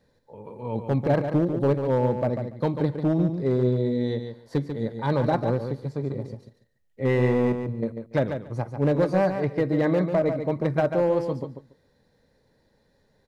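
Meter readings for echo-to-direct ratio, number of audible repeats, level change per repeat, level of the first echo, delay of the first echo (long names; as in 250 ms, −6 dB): −7.5 dB, 2, −16.0 dB, −7.5 dB, 143 ms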